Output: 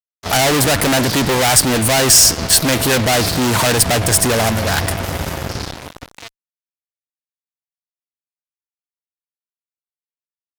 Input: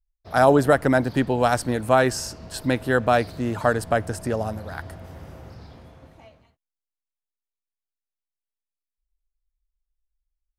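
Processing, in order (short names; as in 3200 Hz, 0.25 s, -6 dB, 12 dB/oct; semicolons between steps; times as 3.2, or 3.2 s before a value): fuzz box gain 38 dB, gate -43 dBFS; high shelf 2400 Hz +10.5 dB; pitch shift +0.5 st; gain -1.5 dB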